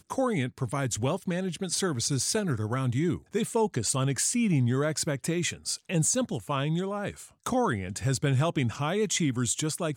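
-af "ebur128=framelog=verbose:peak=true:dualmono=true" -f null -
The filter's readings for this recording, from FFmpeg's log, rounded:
Integrated loudness:
  I:         -25.1 LUFS
  Threshold: -35.1 LUFS
Loudness range:
  LRA:         1.8 LU
  Threshold: -45.1 LUFS
  LRA low:   -26.0 LUFS
  LRA high:  -24.1 LUFS
True peak:
  Peak:      -14.4 dBFS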